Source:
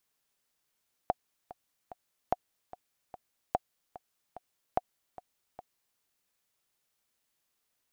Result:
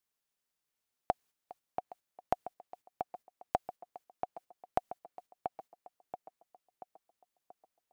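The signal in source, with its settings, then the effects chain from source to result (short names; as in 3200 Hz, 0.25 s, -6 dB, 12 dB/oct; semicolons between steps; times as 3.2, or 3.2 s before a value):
metronome 147 bpm, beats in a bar 3, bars 4, 730 Hz, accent 18 dB -13 dBFS
gate -56 dBFS, range -8 dB; on a send: tape echo 0.682 s, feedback 52%, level -4 dB, low-pass 1700 Hz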